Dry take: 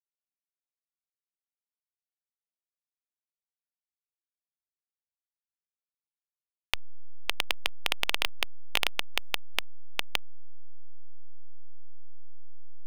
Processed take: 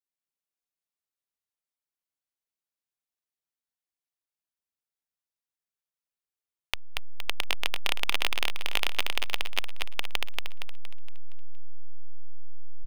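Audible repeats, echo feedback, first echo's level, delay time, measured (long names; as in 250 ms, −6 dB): 5, 45%, −3.0 dB, 233 ms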